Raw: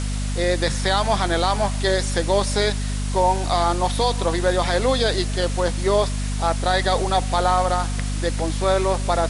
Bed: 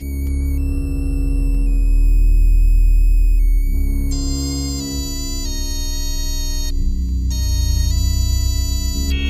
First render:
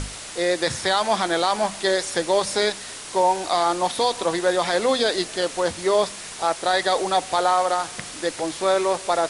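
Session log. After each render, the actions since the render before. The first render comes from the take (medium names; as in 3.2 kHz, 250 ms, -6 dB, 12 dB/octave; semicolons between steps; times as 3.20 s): hum notches 50/100/150/200/250 Hz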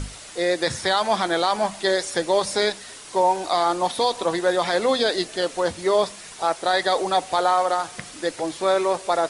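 noise reduction 6 dB, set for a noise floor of -36 dBFS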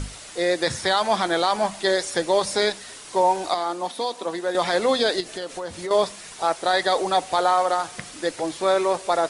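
3.54–4.55 s: ladder high-pass 160 Hz, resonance 25%; 5.20–5.91 s: compression, threshold -27 dBFS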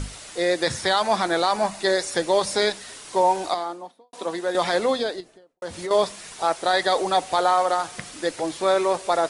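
1.02–2.12 s: band-stop 3.2 kHz, Q 9.5; 3.40–4.13 s: studio fade out; 4.66–5.62 s: studio fade out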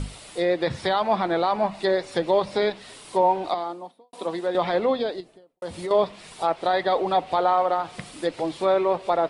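low-pass that closes with the level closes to 2.9 kHz, closed at -18.5 dBFS; fifteen-band graphic EQ 160 Hz +3 dB, 1.6 kHz -6 dB, 6.3 kHz -9 dB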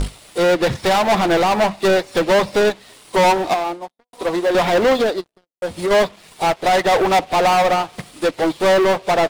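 waveshaping leveller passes 5; upward expansion 2.5:1, over -23 dBFS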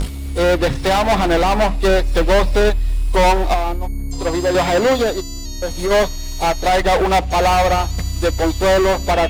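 add bed -5.5 dB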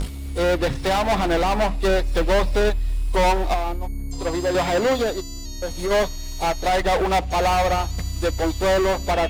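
trim -5 dB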